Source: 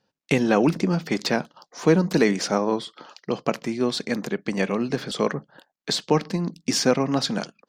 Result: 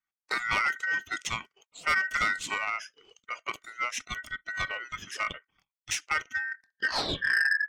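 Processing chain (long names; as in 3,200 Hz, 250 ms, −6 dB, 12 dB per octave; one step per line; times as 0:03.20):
turntable brake at the end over 1.53 s
noise reduction from a noise print of the clip's start 14 dB
rotating-speaker cabinet horn 6.7 Hz
ring modulation 1,700 Hz
soft clipping −19 dBFS, distortion −11 dB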